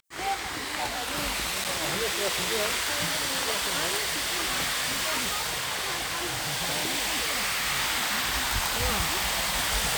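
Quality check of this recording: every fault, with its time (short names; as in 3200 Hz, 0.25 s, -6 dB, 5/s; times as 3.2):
1.64–1.65 gap 7.8 ms
3.98–7.68 clipped -23.5 dBFS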